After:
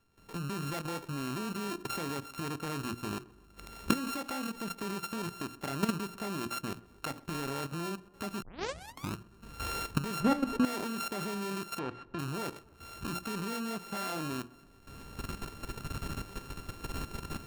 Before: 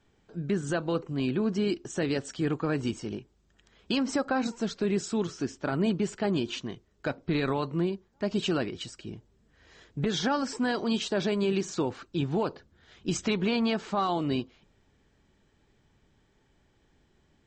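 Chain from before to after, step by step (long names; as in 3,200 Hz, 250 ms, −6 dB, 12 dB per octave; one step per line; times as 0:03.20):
samples sorted by size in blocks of 32 samples
camcorder AGC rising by 40 dB per second
mains-hum notches 60/120/180/240/300/360 Hz
0:10.20–0:10.65: spectral tilt −3 dB per octave
0:11.79–0:12.19: low-pass filter 2,800 Hz 12 dB per octave
output level in coarse steps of 12 dB
tape delay 130 ms, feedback 65%, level −21 dB, low-pass 1,500 Hz
0:08.42: tape start 0.72 s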